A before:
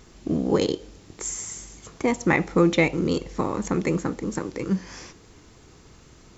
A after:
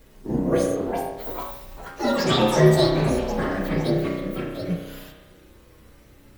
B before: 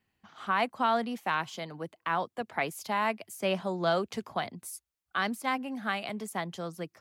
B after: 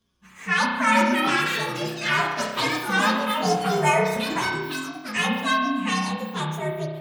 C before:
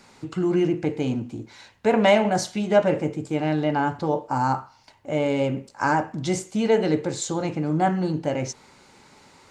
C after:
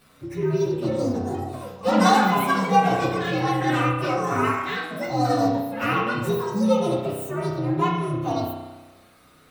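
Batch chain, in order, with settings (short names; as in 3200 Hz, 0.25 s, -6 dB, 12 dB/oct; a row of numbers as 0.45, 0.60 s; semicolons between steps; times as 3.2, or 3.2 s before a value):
inharmonic rescaling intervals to 129%; spring tank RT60 1.2 s, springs 32 ms, chirp 40 ms, DRR 0.5 dB; echoes that change speed 0.559 s, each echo +6 st, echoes 3, each echo -6 dB; match loudness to -23 LUFS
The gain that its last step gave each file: +1.5, +8.5, 0.0 dB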